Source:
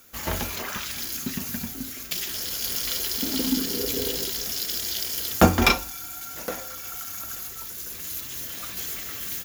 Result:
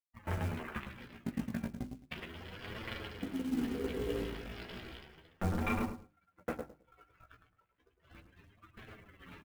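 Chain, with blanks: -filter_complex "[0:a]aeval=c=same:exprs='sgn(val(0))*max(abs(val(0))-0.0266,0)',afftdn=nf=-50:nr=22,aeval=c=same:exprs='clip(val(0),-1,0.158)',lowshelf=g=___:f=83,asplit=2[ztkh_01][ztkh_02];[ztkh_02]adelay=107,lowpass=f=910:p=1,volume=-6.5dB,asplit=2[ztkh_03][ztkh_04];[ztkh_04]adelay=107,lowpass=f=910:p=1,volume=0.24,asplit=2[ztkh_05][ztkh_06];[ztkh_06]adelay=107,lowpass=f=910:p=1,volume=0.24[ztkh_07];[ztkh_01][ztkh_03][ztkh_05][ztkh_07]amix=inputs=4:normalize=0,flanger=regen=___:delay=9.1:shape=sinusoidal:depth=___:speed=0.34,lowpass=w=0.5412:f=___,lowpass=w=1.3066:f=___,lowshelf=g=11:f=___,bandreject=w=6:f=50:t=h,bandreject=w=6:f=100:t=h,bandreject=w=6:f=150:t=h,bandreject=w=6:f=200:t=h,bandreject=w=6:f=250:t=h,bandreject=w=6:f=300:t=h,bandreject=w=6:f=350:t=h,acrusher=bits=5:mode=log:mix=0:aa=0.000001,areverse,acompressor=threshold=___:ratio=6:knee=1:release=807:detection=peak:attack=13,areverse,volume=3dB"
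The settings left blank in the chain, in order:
-5.5, 10, 8.6, 2500, 2500, 210, -34dB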